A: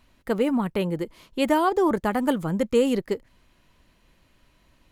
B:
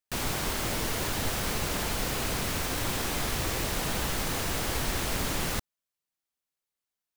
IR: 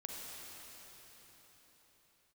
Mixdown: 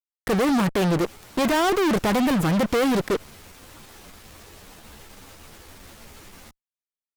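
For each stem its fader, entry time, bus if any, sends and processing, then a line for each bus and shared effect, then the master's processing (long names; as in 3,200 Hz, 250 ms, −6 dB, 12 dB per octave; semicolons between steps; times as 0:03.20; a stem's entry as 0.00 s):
+1.5 dB, 0.00 s, no send, fuzz pedal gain 38 dB, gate −39 dBFS
−9.0 dB, 0.90 s, no send, tube saturation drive 28 dB, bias 0.45; string-ensemble chorus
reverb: not used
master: brickwall limiter −18 dBFS, peak gain reduction 8.5 dB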